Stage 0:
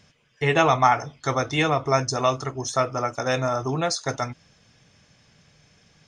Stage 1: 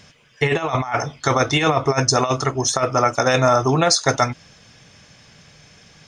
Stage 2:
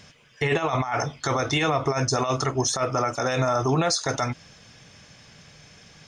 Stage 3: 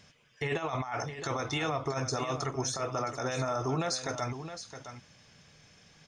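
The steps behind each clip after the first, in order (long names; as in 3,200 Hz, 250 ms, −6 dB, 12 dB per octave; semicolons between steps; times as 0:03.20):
low-shelf EQ 490 Hz −3 dB; compressor whose output falls as the input rises −24 dBFS, ratio −0.5; level +8 dB
brickwall limiter −12 dBFS, peak gain reduction 9.5 dB; level −1.5 dB
single-tap delay 666 ms −10.5 dB; level −9 dB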